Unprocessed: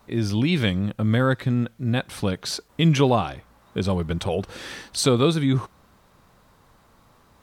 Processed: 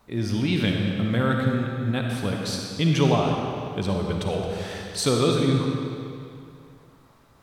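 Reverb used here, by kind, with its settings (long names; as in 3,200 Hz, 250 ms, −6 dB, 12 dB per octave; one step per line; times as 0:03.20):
comb and all-pass reverb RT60 2.5 s, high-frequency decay 0.85×, pre-delay 15 ms, DRR 0.5 dB
level −3.5 dB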